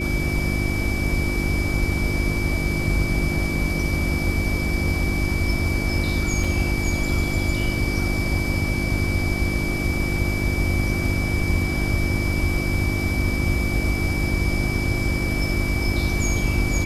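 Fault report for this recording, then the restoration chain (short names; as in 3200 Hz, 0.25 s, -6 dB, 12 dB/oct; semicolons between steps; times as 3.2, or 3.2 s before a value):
hum 50 Hz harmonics 7 -27 dBFS
tone 2300 Hz -28 dBFS
6.44 gap 3.6 ms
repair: notch 2300 Hz, Q 30; de-hum 50 Hz, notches 7; interpolate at 6.44, 3.6 ms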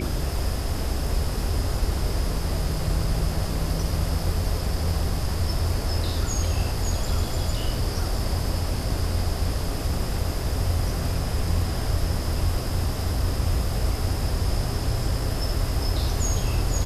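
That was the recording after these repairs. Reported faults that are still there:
none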